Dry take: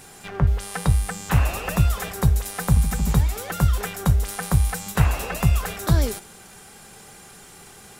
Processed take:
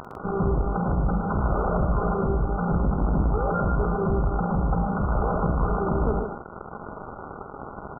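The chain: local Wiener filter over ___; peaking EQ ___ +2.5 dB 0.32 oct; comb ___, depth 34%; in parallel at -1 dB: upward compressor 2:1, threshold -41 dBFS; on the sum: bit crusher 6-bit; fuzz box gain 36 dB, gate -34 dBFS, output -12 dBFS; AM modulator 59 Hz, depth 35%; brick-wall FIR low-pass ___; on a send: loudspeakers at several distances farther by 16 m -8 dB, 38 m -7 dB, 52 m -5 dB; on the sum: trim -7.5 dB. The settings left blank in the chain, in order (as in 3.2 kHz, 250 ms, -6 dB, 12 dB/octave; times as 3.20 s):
15 samples, 310 Hz, 4.9 ms, 1.5 kHz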